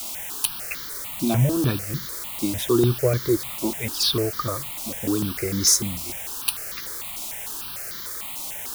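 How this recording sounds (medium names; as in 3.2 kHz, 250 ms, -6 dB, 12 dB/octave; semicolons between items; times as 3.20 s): a quantiser's noise floor 6-bit, dither triangular; notches that jump at a steady rate 6.7 Hz 450–2600 Hz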